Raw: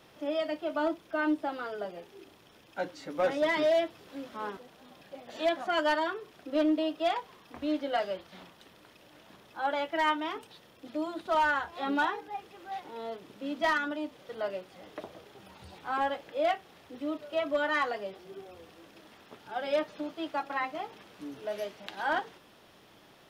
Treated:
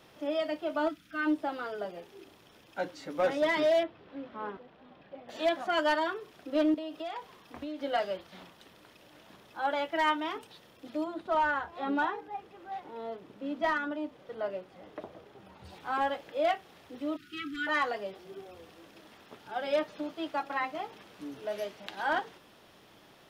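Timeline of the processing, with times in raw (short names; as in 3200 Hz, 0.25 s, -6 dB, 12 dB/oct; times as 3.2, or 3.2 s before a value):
0.89–1.26 spectral gain 310–1200 Hz -15 dB
3.83–5.29 air absorption 330 m
6.74–7.83 compressor 12:1, threshold -34 dBFS
11.04–15.65 high shelf 2700 Hz -10.5 dB
17.16–17.67 brick-wall FIR band-stop 390–1200 Hz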